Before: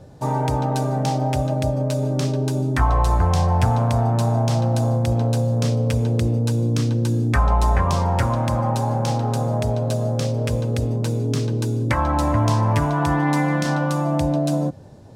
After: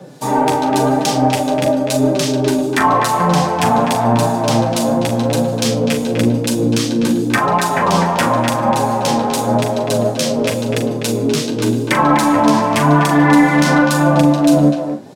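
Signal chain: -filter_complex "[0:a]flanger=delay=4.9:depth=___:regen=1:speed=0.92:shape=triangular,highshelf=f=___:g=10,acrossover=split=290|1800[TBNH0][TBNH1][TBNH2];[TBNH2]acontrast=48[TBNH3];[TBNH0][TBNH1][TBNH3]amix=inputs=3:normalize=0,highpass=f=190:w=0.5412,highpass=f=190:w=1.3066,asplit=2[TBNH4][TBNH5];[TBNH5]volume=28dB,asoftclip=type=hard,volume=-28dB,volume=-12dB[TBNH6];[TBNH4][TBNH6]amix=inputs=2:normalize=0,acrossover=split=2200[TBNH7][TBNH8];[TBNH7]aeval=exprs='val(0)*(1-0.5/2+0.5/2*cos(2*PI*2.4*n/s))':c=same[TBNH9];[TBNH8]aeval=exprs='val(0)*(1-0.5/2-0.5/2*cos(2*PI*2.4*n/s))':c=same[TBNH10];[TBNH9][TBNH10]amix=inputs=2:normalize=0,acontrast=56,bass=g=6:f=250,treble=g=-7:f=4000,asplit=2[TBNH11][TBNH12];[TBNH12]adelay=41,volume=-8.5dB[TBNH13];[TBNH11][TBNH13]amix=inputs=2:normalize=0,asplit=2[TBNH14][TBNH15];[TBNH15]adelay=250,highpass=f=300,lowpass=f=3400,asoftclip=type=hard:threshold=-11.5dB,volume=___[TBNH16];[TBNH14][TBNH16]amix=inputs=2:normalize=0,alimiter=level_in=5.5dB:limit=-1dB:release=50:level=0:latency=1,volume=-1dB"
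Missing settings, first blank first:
8.8, 6600, -6dB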